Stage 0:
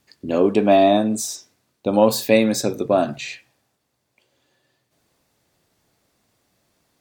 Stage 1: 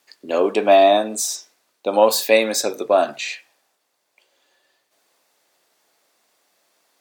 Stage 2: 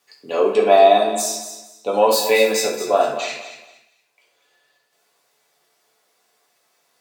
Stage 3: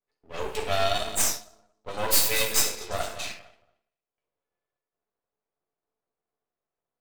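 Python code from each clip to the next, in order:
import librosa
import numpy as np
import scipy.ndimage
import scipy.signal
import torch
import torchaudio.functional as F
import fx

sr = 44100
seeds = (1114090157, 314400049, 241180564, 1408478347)

y1 = scipy.signal.sosfilt(scipy.signal.butter(2, 510.0, 'highpass', fs=sr, output='sos'), x)
y1 = y1 * librosa.db_to_amplitude(4.0)
y2 = fx.echo_feedback(y1, sr, ms=228, feedback_pct=25, wet_db=-11.0)
y2 = fx.rev_fdn(y2, sr, rt60_s=0.62, lf_ratio=0.75, hf_ratio=0.85, size_ms=41.0, drr_db=-3.0)
y2 = y2 * librosa.db_to_amplitude(-4.5)
y3 = fx.env_lowpass(y2, sr, base_hz=480.0, full_db=-15.5)
y3 = F.preemphasis(torch.from_numpy(y3), 0.9).numpy()
y3 = np.maximum(y3, 0.0)
y3 = y3 * librosa.db_to_amplitude(7.0)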